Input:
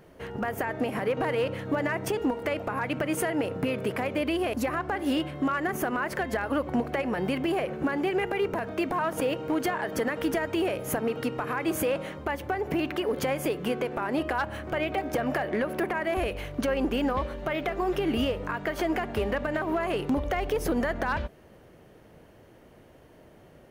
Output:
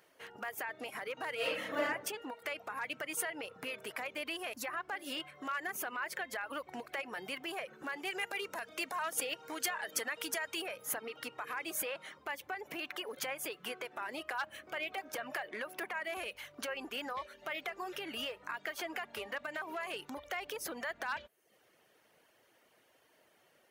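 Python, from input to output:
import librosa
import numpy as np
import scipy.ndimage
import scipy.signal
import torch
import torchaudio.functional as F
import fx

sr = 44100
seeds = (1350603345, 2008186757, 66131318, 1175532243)

y = fx.reverb_throw(x, sr, start_s=1.36, length_s=0.48, rt60_s=0.96, drr_db=-8.0)
y = fx.peak_eq(y, sr, hz=8300.0, db=8.0, octaves=2.1, at=(8.05, 10.62))
y = fx.lowpass(y, sr, hz=2200.0, slope=6)
y = fx.dereverb_blind(y, sr, rt60_s=0.61)
y = np.diff(y, prepend=0.0)
y = F.gain(torch.from_numpy(y), 8.5).numpy()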